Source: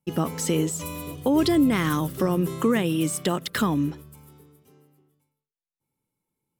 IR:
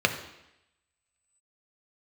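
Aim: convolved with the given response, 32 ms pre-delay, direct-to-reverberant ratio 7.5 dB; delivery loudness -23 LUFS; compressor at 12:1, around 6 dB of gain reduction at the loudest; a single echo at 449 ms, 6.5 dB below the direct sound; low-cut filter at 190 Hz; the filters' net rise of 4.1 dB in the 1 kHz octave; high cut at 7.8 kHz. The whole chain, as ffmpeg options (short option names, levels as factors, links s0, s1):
-filter_complex "[0:a]highpass=190,lowpass=7800,equalizer=f=1000:t=o:g=5,acompressor=threshold=0.0794:ratio=12,aecho=1:1:449:0.473,asplit=2[s0][s1];[1:a]atrim=start_sample=2205,adelay=32[s2];[s1][s2]afir=irnorm=-1:irlink=0,volume=0.0794[s3];[s0][s3]amix=inputs=2:normalize=0,volume=1.68"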